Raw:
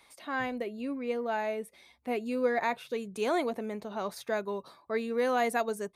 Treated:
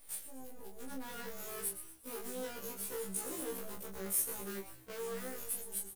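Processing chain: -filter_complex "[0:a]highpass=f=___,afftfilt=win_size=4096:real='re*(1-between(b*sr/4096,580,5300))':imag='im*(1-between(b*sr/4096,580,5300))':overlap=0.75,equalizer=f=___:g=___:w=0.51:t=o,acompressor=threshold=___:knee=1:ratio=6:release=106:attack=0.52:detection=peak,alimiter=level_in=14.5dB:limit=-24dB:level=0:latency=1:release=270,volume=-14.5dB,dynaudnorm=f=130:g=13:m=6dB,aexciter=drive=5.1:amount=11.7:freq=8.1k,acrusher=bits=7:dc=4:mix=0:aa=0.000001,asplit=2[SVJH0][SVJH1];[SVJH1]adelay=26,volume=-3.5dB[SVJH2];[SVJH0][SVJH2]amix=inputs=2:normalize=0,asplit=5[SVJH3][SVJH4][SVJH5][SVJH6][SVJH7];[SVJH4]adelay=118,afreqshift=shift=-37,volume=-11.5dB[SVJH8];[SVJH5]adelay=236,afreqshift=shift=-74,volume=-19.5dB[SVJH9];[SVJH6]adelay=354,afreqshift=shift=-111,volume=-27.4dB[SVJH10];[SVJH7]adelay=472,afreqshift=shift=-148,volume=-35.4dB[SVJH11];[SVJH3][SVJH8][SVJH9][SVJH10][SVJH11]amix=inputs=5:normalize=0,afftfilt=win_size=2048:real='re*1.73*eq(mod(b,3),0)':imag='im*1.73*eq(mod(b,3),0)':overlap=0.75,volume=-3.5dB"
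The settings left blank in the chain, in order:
180, 5.3k, 6, -33dB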